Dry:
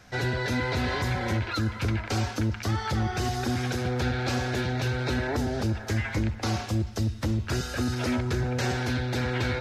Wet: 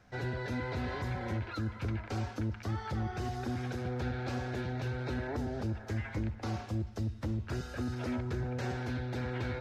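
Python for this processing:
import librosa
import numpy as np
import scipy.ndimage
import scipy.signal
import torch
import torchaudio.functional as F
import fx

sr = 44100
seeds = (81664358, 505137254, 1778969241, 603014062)

y = fx.high_shelf(x, sr, hz=2400.0, db=-9.5)
y = y * librosa.db_to_amplitude(-7.5)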